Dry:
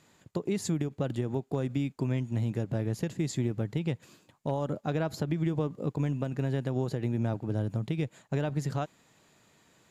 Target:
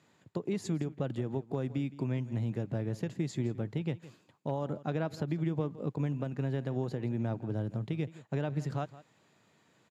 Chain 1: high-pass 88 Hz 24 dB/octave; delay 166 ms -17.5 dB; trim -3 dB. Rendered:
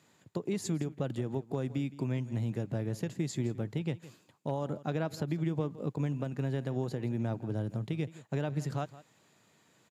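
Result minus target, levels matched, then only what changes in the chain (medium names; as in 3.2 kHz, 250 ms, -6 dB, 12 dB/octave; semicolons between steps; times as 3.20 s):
8 kHz band +6.0 dB
add after high-pass: treble shelf 7 kHz -11.5 dB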